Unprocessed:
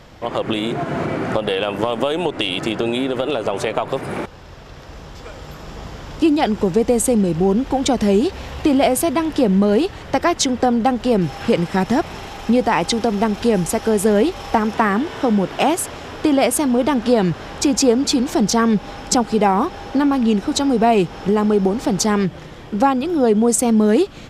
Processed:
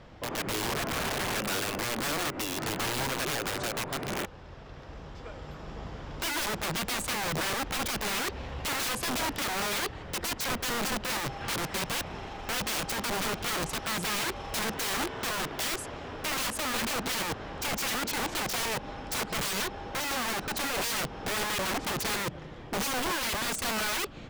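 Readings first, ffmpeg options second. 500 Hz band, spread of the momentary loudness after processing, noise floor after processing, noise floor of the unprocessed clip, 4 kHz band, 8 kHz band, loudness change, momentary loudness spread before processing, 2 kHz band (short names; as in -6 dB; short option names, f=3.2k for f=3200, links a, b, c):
-18.5 dB, 7 LU, -44 dBFS, -37 dBFS, -4.5 dB, -7.0 dB, -12.5 dB, 9 LU, -3.5 dB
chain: -af "aemphasis=mode=reproduction:type=50fm,aeval=exprs='(mod(8.41*val(0)+1,2)-1)/8.41':c=same,volume=-7.5dB"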